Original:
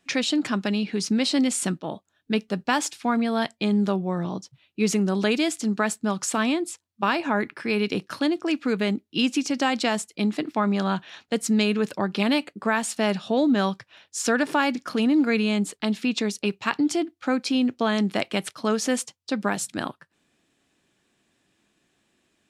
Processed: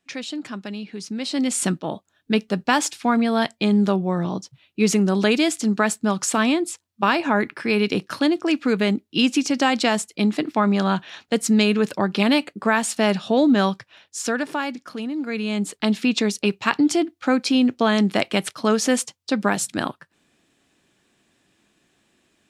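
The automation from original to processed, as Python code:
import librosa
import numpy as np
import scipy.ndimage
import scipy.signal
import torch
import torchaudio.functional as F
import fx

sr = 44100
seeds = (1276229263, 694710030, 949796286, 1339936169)

y = fx.gain(x, sr, db=fx.line((1.13, -7.0), (1.62, 4.0), (13.63, 4.0), (15.15, -8.0), (15.83, 4.5)))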